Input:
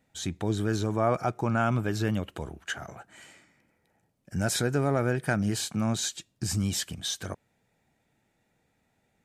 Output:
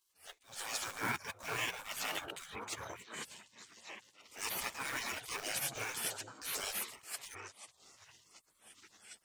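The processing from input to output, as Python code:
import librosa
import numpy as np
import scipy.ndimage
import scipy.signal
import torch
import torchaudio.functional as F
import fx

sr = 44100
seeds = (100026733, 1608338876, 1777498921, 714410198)

p1 = fx.chorus_voices(x, sr, voices=4, hz=1.0, base_ms=12, depth_ms=3.0, mix_pct=55)
p2 = fx.quant_float(p1, sr, bits=2)
p3 = p1 + (p2 * librosa.db_to_amplitude(-10.0))
p4 = fx.low_shelf(p3, sr, hz=490.0, db=-9.5)
p5 = fx.transient(p4, sr, attack_db=-6, sustain_db=-10)
p6 = fx.low_shelf(p5, sr, hz=100.0, db=-9.5)
p7 = p6 + fx.echo_stepped(p6, sr, ms=763, hz=280.0, octaves=1.4, feedback_pct=70, wet_db=-3.5, dry=0)
p8 = fx.spec_gate(p7, sr, threshold_db=-20, keep='weak')
p9 = fx.attack_slew(p8, sr, db_per_s=170.0)
y = p9 * librosa.db_to_amplitude(10.0)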